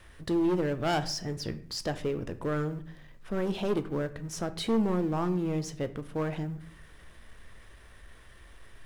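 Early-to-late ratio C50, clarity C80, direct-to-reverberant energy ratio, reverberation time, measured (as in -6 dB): 15.0 dB, 19.0 dB, 10.5 dB, 0.55 s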